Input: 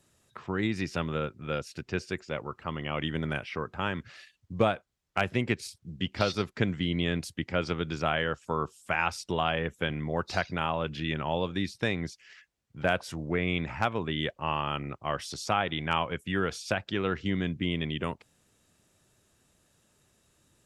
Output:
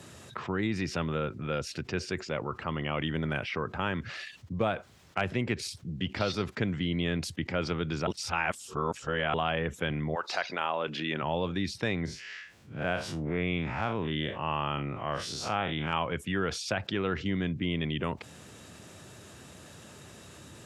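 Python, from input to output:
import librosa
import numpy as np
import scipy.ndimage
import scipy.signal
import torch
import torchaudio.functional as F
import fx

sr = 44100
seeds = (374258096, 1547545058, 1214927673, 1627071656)

y = fx.highpass(x, sr, hz=fx.line((10.14, 720.0), (11.21, 210.0)), slope=12, at=(10.14, 11.21), fade=0.02)
y = fx.spec_blur(y, sr, span_ms=94.0, at=(12.05, 15.93))
y = fx.edit(y, sr, fx.reverse_span(start_s=8.07, length_s=1.27), tone=tone)
y = scipy.signal.sosfilt(scipy.signal.butter(4, 69.0, 'highpass', fs=sr, output='sos'), y)
y = fx.high_shelf(y, sr, hz=8100.0, db=-11.0)
y = fx.env_flatten(y, sr, amount_pct=50)
y = F.gain(torch.from_numpy(y), -5.0).numpy()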